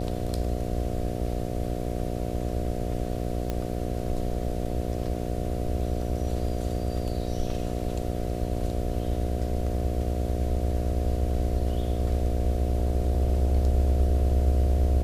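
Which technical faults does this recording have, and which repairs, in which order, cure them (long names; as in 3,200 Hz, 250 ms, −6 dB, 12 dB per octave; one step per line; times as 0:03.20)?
mains buzz 60 Hz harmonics 12 −31 dBFS
0:03.50: click −16 dBFS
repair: click removal
hum removal 60 Hz, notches 12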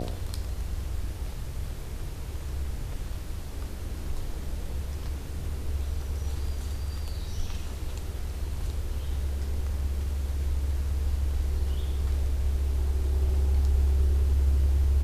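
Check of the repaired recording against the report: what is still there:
none of them is left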